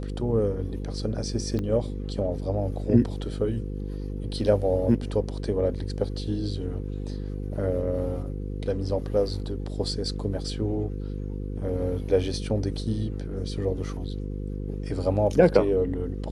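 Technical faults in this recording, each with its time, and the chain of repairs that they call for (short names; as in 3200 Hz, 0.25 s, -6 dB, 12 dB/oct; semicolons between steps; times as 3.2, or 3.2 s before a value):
buzz 50 Hz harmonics 10 -32 dBFS
1.59 pop -19 dBFS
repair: de-click; de-hum 50 Hz, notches 10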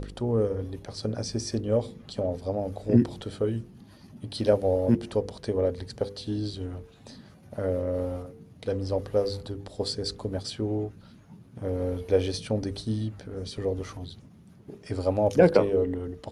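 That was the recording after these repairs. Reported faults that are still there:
1.59 pop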